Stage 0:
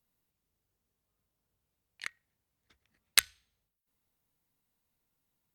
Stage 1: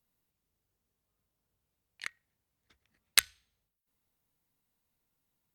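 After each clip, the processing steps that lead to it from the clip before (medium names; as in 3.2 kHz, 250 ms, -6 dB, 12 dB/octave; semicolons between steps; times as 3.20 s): no audible change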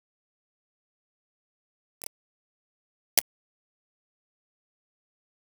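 bit-reversed sample order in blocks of 32 samples; word length cut 6-bit, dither none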